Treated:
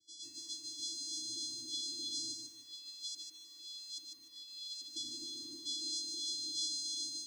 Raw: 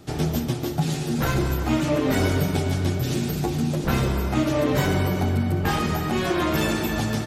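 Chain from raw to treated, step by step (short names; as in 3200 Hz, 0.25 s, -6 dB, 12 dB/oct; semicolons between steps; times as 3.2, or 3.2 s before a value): spectral limiter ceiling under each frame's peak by 22 dB; AGC gain up to 14.5 dB; bell 1500 Hz -11 dB 0.3 oct; resonator 130 Hz, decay 0.25 s, harmonics all, mix 100%; 2.31–4.96 LFO band-pass saw up 1.2 Hz 870–4900 Hz; reverb RT60 0.50 s, pre-delay 4 ms, DRR 13 dB; harmonic tremolo 3.1 Hz, depth 50%, crossover 780 Hz; vocoder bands 8, square 377 Hz; brick-wall FIR band-stop 320–3300 Hz; fixed phaser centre 530 Hz, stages 4; lo-fi delay 0.149 s, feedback 35%, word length 11-bit, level -4.5 dB; gain +1.5 dB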